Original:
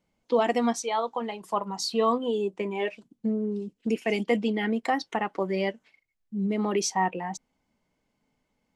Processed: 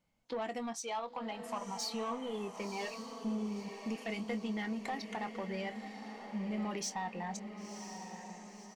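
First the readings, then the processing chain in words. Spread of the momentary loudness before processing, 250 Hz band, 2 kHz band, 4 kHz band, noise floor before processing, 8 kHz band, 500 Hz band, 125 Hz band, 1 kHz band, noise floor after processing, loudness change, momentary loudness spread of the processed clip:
8 LU, -9.5 dB, -9.5 dB, -8.5 dB, -77 dBFS, -7.5 dB, -14.0 dB, n/a, -11.0 dB, -52 dBFS, -11.5 dB, 8 LU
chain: bell 380 Hz -8 dB 0.65 oct; compressor 3:1, threshold -32 dBFS, peak gain reduction 9.5 dB; soft clip -28 dBFS, distortion -17 dB; doubler 23 ms -12.5 dB; diffused feedback echo 1.019 s, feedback 51%, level -8 dB; gain -3 dB

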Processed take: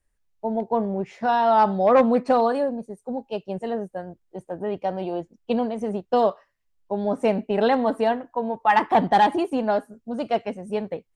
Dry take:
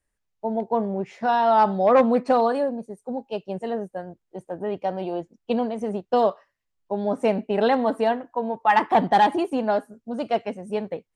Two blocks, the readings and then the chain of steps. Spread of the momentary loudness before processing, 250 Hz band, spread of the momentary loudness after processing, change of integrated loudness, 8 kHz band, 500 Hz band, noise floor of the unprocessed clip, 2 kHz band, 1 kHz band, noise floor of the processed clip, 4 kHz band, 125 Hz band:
14 LU, +0.5 dB, 14 LU, 0.0 dB, n/a, 0.0 dB, -78 dBFS, 0.0 dB, 0.0 dB, -71 dBFS, 0.0 dB, +1.0 dB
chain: low shelf 62 Hz +9.5 dB

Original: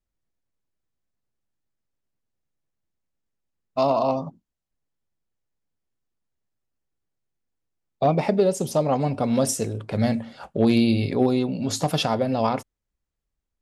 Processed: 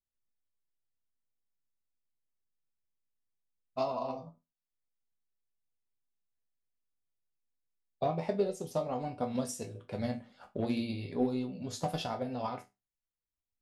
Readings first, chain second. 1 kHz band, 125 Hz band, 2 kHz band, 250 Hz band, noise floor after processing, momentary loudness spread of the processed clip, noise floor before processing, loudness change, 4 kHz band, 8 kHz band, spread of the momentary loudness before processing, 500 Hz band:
-11.5 dB, -14.0 dB, -13.0 dB, -13.0 dB, under -85 dBFS, 10 LU, -83 dBFS, -12.5 dB, -14.0 dB, -15.0 dB, 8 LU, -12.0 dB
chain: flange 1.3 Hz, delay 4.1 ms, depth 9.2 ms, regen -66%; transient shaper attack +6 dB, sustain -2 dB; resonator bank E2 minor, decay 0.22 s

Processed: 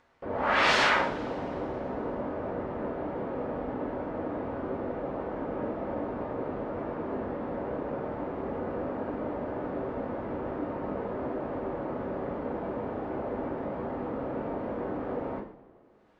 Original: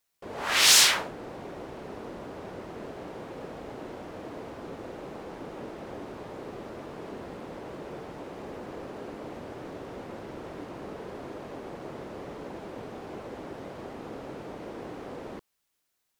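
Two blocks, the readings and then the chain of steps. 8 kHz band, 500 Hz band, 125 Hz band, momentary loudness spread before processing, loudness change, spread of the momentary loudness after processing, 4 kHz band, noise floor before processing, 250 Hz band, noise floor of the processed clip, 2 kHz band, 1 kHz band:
under -20 dB, +7.0 dB, +5.0 dB, 7 LU, -2.0 dB, 5 LU, under -10 dB, -78 dBFS, +7.0 dB, -53 dBFS, +0.5 dB, +6.0 dB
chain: LPF 1400 Hz 12 dB/oct; upward compressor, threshold -59 dBFS; two-slope reverb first 0.51 s, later 2.8 s, from -21 dB, DRR -1.5 dB; gain +3.5 dB

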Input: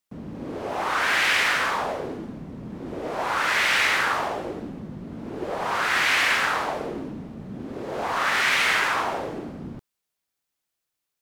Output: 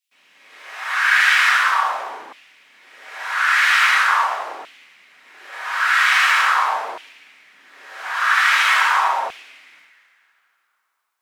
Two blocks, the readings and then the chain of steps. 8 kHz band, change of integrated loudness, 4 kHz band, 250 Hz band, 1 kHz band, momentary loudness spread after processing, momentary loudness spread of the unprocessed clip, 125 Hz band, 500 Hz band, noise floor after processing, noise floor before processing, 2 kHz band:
+2.5 dB, +7.0 dB, +3.5 dB, under -20 dB, +7.0 dB, 17 LU, 18 LU, under -30 dB, -7.0 dB, -69 dBFS, -83 dBFS, +7.0 dB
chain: two-slope reverb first 0.61 s, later 2.6 s, from -21 dB, DRR -5.5 dB; LFO high-pass saw down 0.43 Hz 870–2700 Hz; gain -4.5 dB

